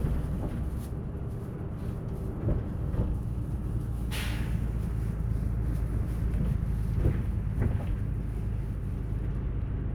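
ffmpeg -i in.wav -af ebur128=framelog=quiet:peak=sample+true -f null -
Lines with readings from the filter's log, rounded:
Integrated loudness:
  I:         -32.5 LUFS
  Threshold: -42.5 LUFS
Loudness range:
  LRA:         3.0 LU
  Threshold: -52.1 LUFS
  LRA low:   -33.9 LUFS
  LRA high:  -30.9 LUFS
Sample peak:
  Peak:      -13.1 dBFS
True peak:
  Peak:      -13.1 dBFS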